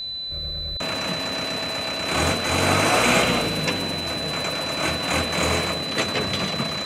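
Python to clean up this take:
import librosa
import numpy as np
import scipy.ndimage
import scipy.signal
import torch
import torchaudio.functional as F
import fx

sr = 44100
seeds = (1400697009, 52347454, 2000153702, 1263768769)

y = fx.fix_declick_ar(x, sr, threshold=6.5)
y = fx.notch(y, sr, hz=4000.0, q=30.0)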